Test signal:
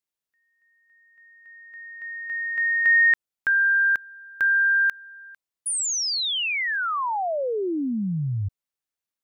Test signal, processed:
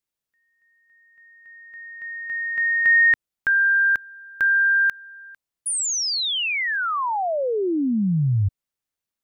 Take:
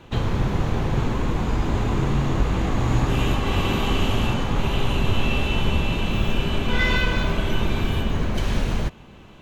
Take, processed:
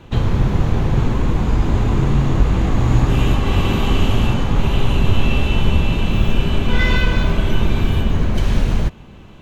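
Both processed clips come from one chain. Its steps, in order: low shelf 240 Hz +6 dB; gain +1.5 dB

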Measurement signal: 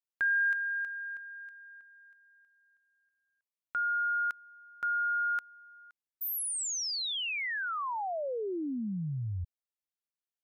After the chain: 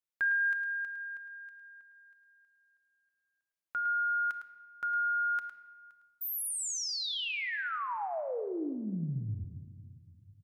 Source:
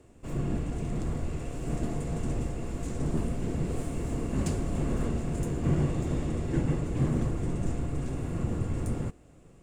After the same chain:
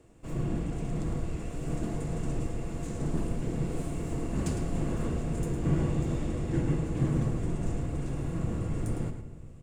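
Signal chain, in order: on a send: echo 0.107 s -9.5 dB; on the sum: shoebox room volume 1600 m³, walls mixed, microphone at 0.64 m; gain -2 dB

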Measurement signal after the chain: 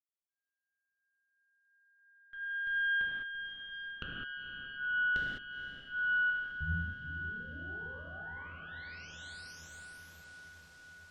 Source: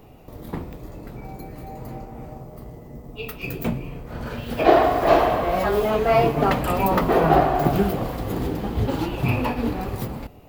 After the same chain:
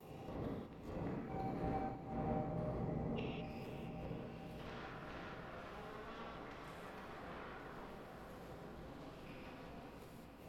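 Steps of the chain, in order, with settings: gate with hold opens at -39 dBFS; HPF 70 Hz 12 dB/oct; added harmonics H 3 -7 dB, 5 -41 dB, 6 -13 dB, 7 -43 dB, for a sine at -2 dBFS; high shelf 8800 Hz +10.5 dB; compressor, threshold -30 dBFS; flipped gate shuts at -32 dBFS, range -25 dB; non-linear reverb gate 0.23 s flat, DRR -5.5 dB; treble ducked by the level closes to 2700 Hz, closed at -42.5 dBFS; diffused feedback echo 0.476 s, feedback 77%, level -9.5 dB

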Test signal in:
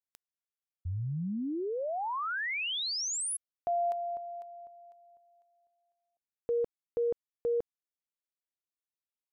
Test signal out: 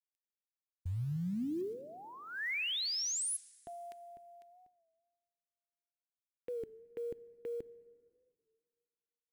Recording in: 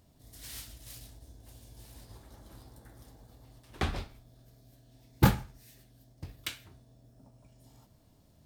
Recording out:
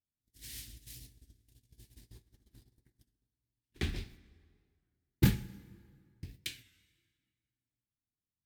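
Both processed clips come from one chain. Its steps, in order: gate -49 dBFS, range -34 dB; band shelf 840 Hz -14.5 dB; in parallel at -12 dB: soft clip -20 dBFS; on the sum: short-mantissa float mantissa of 4-bit; plate-style reverb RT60 2.1 s, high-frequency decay 0.7×, DRR 18 dB; record warp 33 1/3 rpm, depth 100 cents; gain -4 dB

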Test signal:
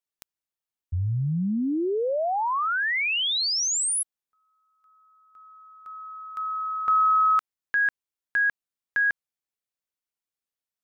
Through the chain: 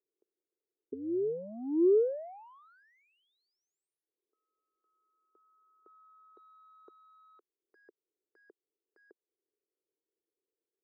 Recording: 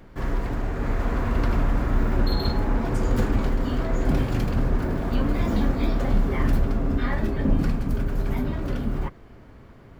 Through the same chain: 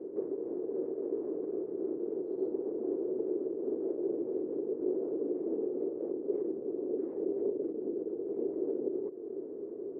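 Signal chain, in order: compressor 8:1, threshold -32 dBFS; sine folder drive 18 dB, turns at -16 dBFS; Butterworth band-pass 390 Hz, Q 3; gain -3.5 dB

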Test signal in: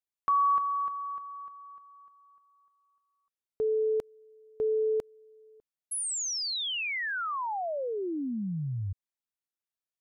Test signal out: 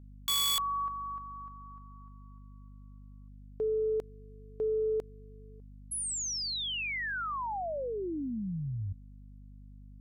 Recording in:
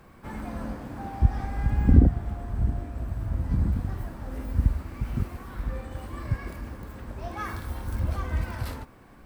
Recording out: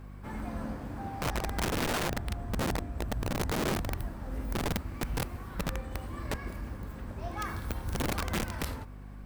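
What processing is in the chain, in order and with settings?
soft clip -10.5 dBFS; hum 50 Hz, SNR 15 dB; wrapped overs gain 23 dB; gain -2.5 dB

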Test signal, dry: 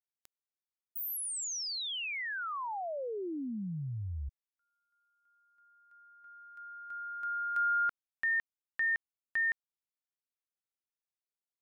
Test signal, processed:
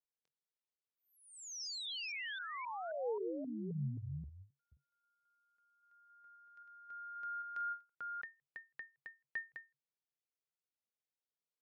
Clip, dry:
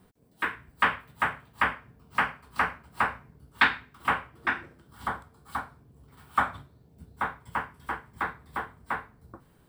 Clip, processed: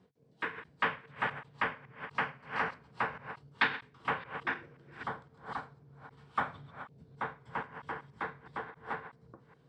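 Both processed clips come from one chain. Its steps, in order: reverse delay 0.265 s, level -5.5 dB; speaker cabinet 110–6200 Hz, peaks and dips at 140 Hz +9 dB, 470 Hz +8 dB, 1300 Hz -3 dB; ending taper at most 260 dB/s; gain -6.5 dB

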